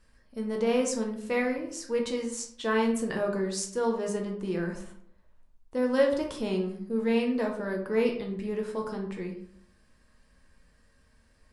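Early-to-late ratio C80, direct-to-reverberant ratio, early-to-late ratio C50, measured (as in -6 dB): 11.0 dB, 1.0 dB, 7.0 dB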